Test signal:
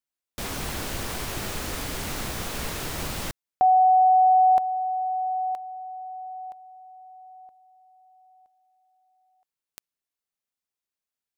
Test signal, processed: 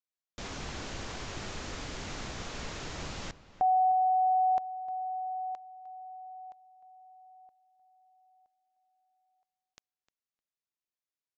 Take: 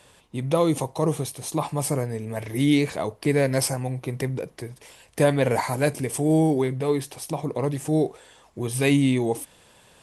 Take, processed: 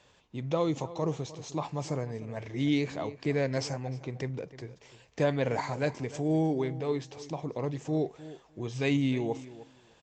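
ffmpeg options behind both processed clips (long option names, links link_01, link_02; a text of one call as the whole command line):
ffmpeg -i in.wav -filter_complex "[0:a]asplit=2[link_01][link_02];[link_02]adelay=305,lowpass=frequency=3100:poles=1,volume=-16dB,asplit=2[link_03][link_04];[link_04]adelay=305,lowpass=frequency=3100:poles=1,volume=0.16[link_05];[link_03][link_05]amix=inputs=2:normalize=0[link_06];[link_01][link_06]amix=inputs=2:normalize=0,aresample=16000,aresample=44100,volume=-7.5dB" out.wav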